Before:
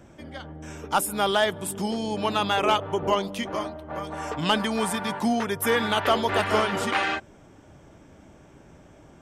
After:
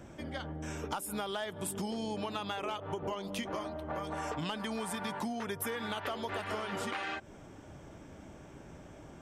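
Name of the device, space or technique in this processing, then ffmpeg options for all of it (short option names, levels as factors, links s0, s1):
serial compression, leveller first: -af "acompressor=threshold=0.0447:ratio=2.5,acompressor=threshold=0.02:ratio=6"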